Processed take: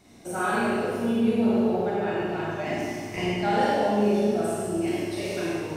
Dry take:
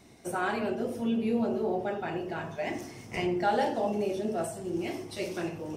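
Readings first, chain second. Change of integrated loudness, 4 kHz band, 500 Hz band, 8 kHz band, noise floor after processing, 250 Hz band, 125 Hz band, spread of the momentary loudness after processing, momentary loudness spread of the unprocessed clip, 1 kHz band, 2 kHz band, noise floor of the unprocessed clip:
+6.0 dB, +6.0 dB, +5.5 dB, +6.0 dB, -37 dBFS, +6.5 dB, +7.0 dB, 7 LU, 8 LU, +5.0 dB, +5.5 dB, -47 dBFS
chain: Schroeder reverb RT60 1.7 s, combs from 30 ms, DRR -6 dB; trim -1.5 dB

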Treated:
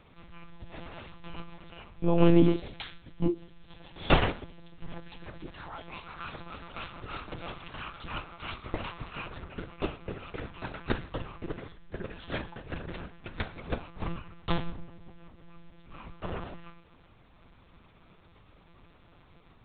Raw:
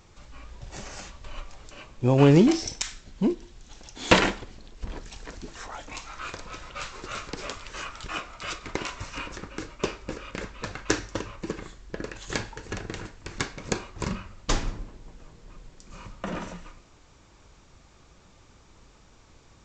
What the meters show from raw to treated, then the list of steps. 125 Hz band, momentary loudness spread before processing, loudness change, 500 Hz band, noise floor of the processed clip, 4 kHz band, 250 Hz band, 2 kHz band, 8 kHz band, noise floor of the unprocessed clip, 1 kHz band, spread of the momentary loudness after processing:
-4.5 dB, 22 LU, -5.0 dB, -4.5 dB, -59 dBFS, -7.0 dB, -4.0 dB, -6.5 dB, under -40 dB, -56 dBFS, -4.0 dB, 22 LU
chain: monotone LPC vocoder at 8 kHz 170 Hz; dynamic bell 2 kHz, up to -4 dB, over -49 dBFS, Q 1.8; trim -2.5 dB

